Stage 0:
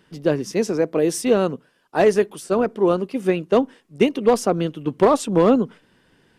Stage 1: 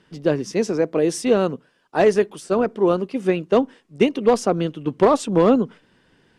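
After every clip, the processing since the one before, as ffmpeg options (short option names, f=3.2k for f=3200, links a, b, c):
-af "lowpass=8.7k"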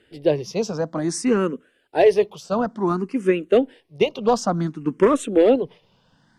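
-filter_complex "[0:a]asplit=2[a][b];[b]afreqshift=0.56[c];[a][c]amix=inputs=2:normalize=1,volume=2dB"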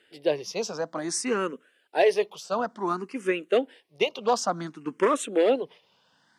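-af "highpass=f=820:p=1"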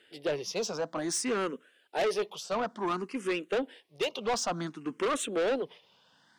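-af "asoftclip=type=tanh:threshold=-25dB,equalizer=f=3.4k:t=o:w=0.38:g=3"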